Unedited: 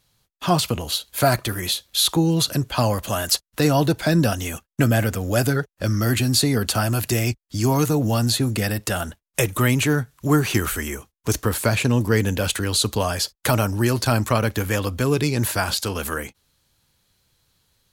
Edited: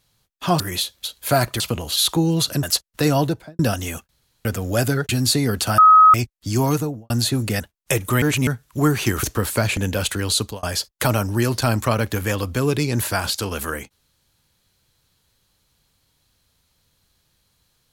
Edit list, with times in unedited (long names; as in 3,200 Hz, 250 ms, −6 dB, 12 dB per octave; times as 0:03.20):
0:00.60–0:00.96: swap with 0:01.51–0:01.96
0:02.63–0:03.22: remove
0:03.74–0:04.18: fade out and dull
0:04.68–0:05.04: fill with room tone
0:05.68–0:06.17: remove
0:06.86–0:07.22: beep over 1,270 Hz −6.5 dBFS
0:07.76–0:08.18: fade out and dull
0:08.68–0:09.08: remove
0:09.70–0:09.95: reverse
0:10.71–0:11.31: remove
0:11.85–0:12.21: remove
0:12.82–0:13.07: fade out